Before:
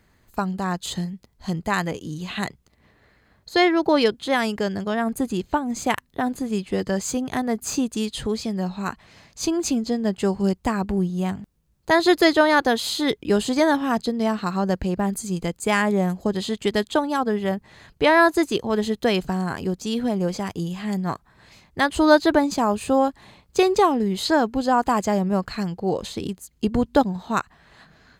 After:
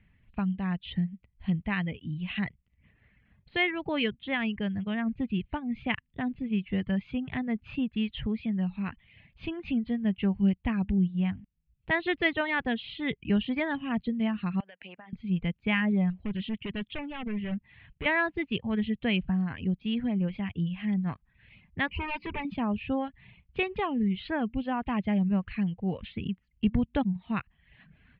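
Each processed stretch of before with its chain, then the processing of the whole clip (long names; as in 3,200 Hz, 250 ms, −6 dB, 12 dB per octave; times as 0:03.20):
0:14.60–0:15.13: high-pass filter 690 Hz + downward compressor 12 to 1, threshold −31 dBFS
0:16.10–0:18.06: gain into a clipping stage and back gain 23 dB + highs frequency-modulated by the lows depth 0.13 ms
0:21.87–0:22.45: EQ curve with evenly spaced ripples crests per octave 0.83, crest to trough 16 dB + hard clipping −19 dBFS + mains-hum notches 60/120/180/240/300/360/420/480/540 Hz
whole clip: reverb reduction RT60 0.63 s; Butterworth low-pass 3,000 Hz 48 dB per octave; flat-topped bell 680 Hz −13.5 dB 2.7 octaves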